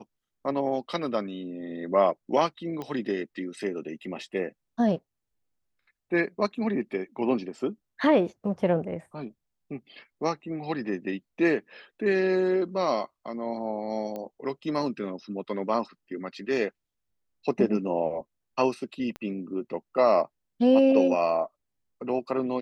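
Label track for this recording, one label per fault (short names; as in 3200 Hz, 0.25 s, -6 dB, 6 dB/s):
2.820000	2.820000	pop -22 dBFS
14.160000	14.160000	pop -23 dBFS
19.160000	19.160000	pop -23 dBFS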